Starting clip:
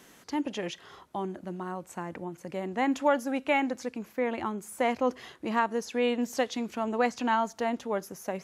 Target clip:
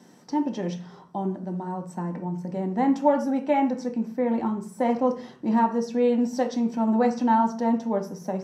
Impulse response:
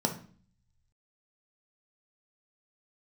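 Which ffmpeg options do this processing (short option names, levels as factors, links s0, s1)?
-filter_complex "[1:a]atrim=start_sample=2205[s0];[0:a][s0]afir=irnorm=-1:irlink=0,volume=0.376"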